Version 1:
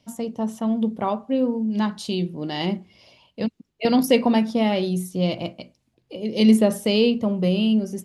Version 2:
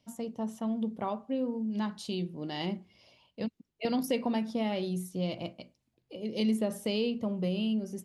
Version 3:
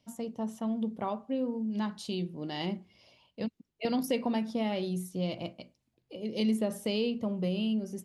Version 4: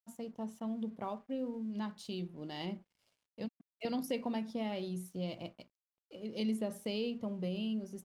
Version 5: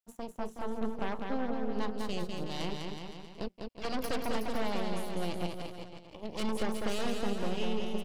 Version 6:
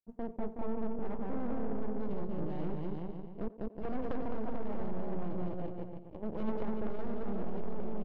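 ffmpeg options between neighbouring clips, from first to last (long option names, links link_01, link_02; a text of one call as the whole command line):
ffmpeg -i in.wav -af "acompressor=threshold=-20dB:ratio=2,volume=-8.5dB" out.wav
ffmpeg -i in.wav -af anull out.wav
ffmpeg -i in.wav -af "aeval=exprs='sgn(val(0))*max(abs(val(0))-0.00112,0)':channel_layout=same,volume=-6dB" out.wav
ffmpeg -i in.wav -af "aeval=exprs='0.0562*(cos(1*acos(clip(val(0)/0.0562,-1,1)))-cos(1*PI/2))+0.0224*(cos(6*acos(clip(val(0)/0.0562,-1,1)))-cos(6*PI/2))':channel_layout=same,aecho=1:1:200|370|514.5|637.3|741.7:0.631|0.398|0.251|0.158|0.1,volume=-2dB" out.wav
ffmpeg -i in.wav -filter_complex "[0:a]aeval=exprs='clip(val(0),-1,0.0282)':channel_layout=same,asplit=2[link_01][link_02];[link_02]adelay=90,highpass=300,lowpass=3400,asoftclip=type=hard:threshold=-37dB,volume=-11dB[link_03];[link_01][link_03]amix=inputs=2:normalize=0,adynamicsmooth=sensitivity=1.5:basefreq=520,volume=5dB" out.wav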